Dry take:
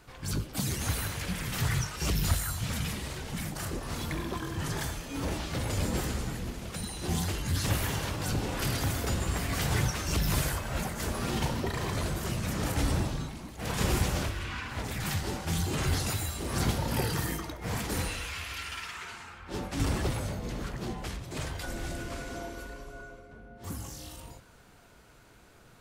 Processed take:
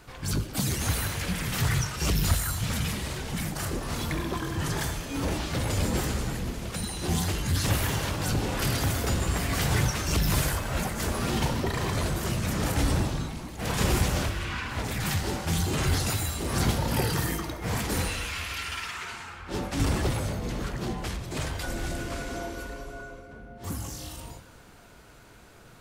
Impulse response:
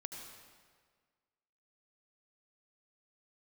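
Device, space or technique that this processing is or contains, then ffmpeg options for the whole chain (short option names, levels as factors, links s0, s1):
saturated reverb return: -filter_complex "[0:a]asplit=2[s0][s1];[1:a]atrim=start_sample=2205[s2];[s1][s2]afir=irnorm=-1:irlink=0,asoftclip=type=tanh:threshold=0.0178,volume=0.596[s3];[s0][s3]amix=inputs=2:normalize=0,volume=1.26"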